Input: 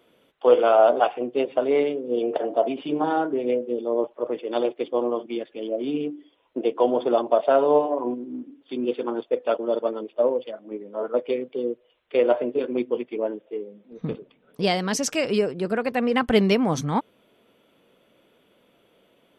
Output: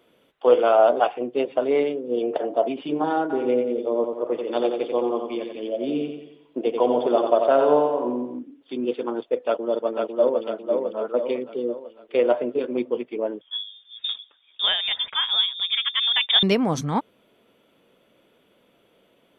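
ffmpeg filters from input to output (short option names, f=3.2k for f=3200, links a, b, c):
-filter_complex "[0:a]asplit=3[a][b][c];[a]afade=t=out:st=3.29:d=0.02[d];[b]aecho=1:1:89|178|267|356|445|534:0.531|0.265|0.133|0.0664|0.0332|0.0166,afade=t=in:st=3.29:d=0.02,afade=t=out:st=8.38:d=0.02[e];[c]afade=t=in:st=8.38:d=0.02[f];[d][e][f]amix=inputs=3:normalize=0,asplit=2[g][h];[h]afade=t=in:st=9.46:d=0.01,afade=t=out:st=10.42:d=0.01,aecho=0:1:500|1000|1500|2000|2500|3000|3500:0.668344|0.334172|0.167086|0.083543|0.0417715|0.0208857|0.0104429[i];[g][i]amix=inputs=2:normalize=0,asettb=1/sr,asplit=3[j][k][l];[j]atrim=end=13.414[m];[k]atrim=start=13.41:end=16.43,asetpts=PTS-STARTPTS,afade=t=in:d=0.004:c=qsin,afade=t=out:st=3.016:d=0.004:c=qsin,lowpass=f=3.2k:t=q:w=0.5098,lowpass=f=3.2k:t=q:w=0.6013,lowpass=f=3.2k:t=q:w=0.9,lowpass=f=3.2k:t=q:w=2.563,afreqshift=-3800[n];[l]atrim=start=16.426[o];[m][n]acrossfade=d=0.004:c1=hsin:c2=qsin[p];[p][o]acrossfade=d=0.004:c1=qsin:c2=hsin"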